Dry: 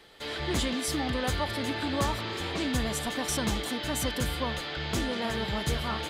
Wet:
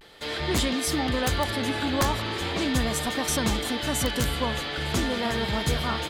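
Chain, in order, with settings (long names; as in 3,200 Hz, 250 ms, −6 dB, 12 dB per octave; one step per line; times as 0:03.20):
echo machine with several playback heads 295 ms, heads second and third, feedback 50%, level −21 dB
wrap-around overflow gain 17.5 dB
pitch vibrato 0.4 Hz 42 cents
level +4 dB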